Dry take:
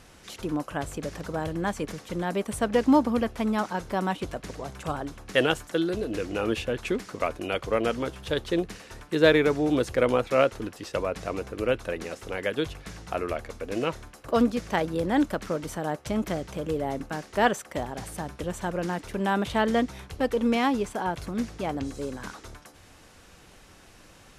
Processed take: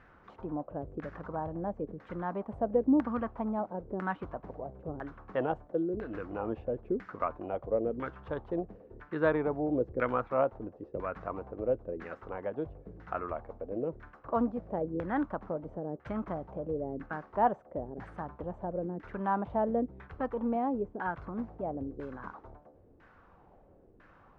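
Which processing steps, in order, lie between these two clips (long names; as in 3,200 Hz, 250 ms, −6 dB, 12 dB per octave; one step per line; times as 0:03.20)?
auto-filter low-pass saw down 1 Hz 380–1,700 Hz
dynamic equaliser 440 Hz, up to −4 dB, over −32 dBFS, Q 1.5
level −7.5 dB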